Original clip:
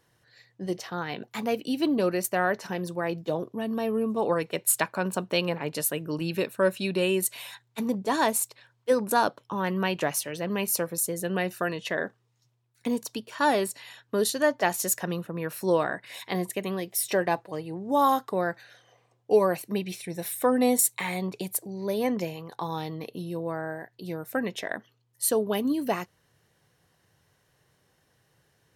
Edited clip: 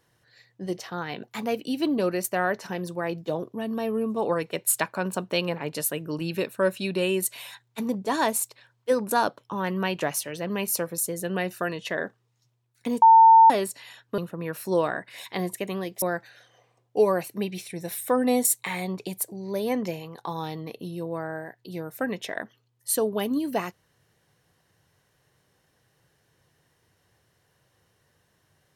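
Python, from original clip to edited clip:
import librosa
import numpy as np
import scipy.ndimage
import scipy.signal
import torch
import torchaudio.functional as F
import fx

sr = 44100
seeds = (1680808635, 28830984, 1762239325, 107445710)

y = fx.edit(x, sr, fx.bleep(start_s=13.02, length_s=0.48, hz=900.0, db=-9.5),
    fx.cut(start_s=14.18, length_s=0.96),
    fx.cut(start_s=16.98, length_s=1.38), tone=tone)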